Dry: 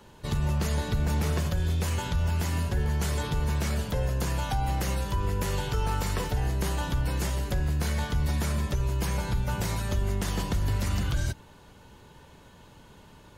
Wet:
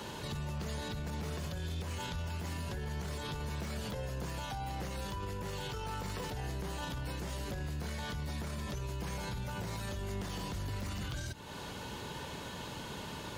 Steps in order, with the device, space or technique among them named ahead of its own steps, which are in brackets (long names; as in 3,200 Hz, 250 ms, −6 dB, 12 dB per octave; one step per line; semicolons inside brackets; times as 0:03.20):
broadcast voice chain (high-pass filter 110 Hz 6 dB per octave; de-essing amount 95%; downward compressor 3 to 1, threshold −44 dBFS, peak gain reduction 13.5 dB; parametric band 4,100 Hz +4 dB 1.5 octaves; brickwall limiter −41 dBFS, peak gain reduction 11 dB)
level +10 dB